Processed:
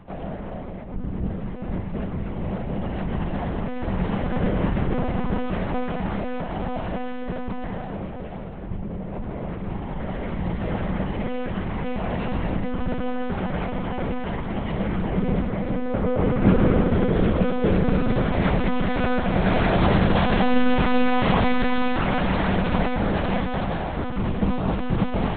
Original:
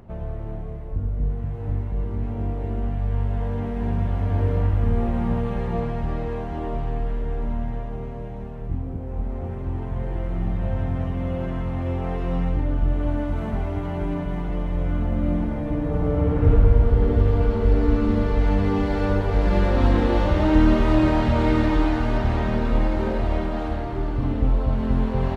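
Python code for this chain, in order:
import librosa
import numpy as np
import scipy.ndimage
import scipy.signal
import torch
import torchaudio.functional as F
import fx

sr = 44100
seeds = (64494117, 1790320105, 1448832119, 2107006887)

y = fx.tilt_eq(x, sr, slope=2.5)
y = fx.lpc_monotone(y, sr, seeds[0], pitch_hz=250.0, order=8)
y = fx.peak_eq(y, sr, hz=190.0, db=10.0, octaves=0.35)
y = y * 10.0 ** (4.5 / 20.0)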